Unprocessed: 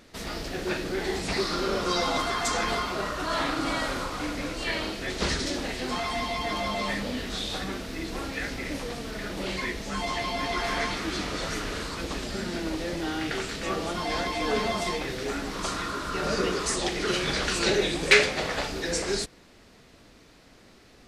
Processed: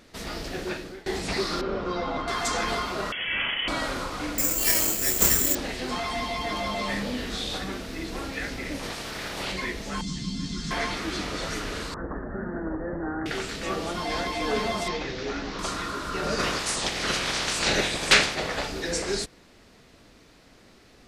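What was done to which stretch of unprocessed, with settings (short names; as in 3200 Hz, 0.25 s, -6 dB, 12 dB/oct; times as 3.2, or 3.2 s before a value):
0.58–1.06 fade out, to -23 dB
1.61–2.28 tape spacing loss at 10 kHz 31 dB
3.12–3.68 inverted band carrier 3300 Hz
4.38–5.55 careless resampling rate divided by 6×, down filtered, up zero stuff
6.87–7.58 doubler 45 ms -7 dB
8.82–9.51 spectral limiter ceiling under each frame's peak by 15 dB
10.01–10.71 EQ curve 110 Hz 0 dB, 170 Hz +14 dB, 240 Hz +4 dB, 400 Hz -11 dB, 680 Hz -29 dB, 1400 Hz -12 dB, 2200 Hz -16 dB, 3800 Hz -2 dB, 7600 Hz +4 dB, 13000 Hz -18 dB
11.94–13.26 steep low-pass 1800 Hz 96 dB/oct
14.88–15.59 CVSD 32 kbps
16.38–18.34 spectral limiter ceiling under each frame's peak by 16 dB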